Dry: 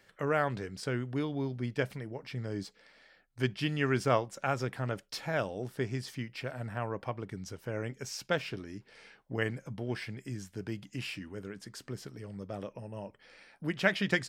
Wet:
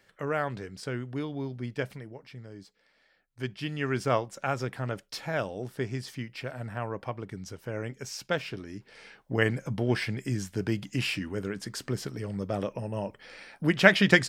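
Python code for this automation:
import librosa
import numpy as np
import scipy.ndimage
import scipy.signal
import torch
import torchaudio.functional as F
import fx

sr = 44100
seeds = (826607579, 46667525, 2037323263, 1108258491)

y = fx.gain(x, sr, db=fx.line((1.92, -0.5), (2.58, -9.5), (4.18, 1.5), (8.54, 1.5), (9.73, 9.0)))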